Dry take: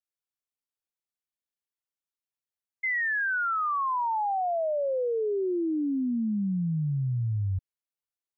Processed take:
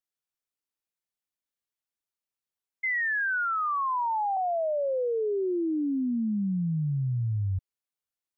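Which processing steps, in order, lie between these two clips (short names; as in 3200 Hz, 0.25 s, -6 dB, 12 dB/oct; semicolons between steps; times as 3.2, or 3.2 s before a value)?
3.44–4.37 elliptic high-pass 350 Hz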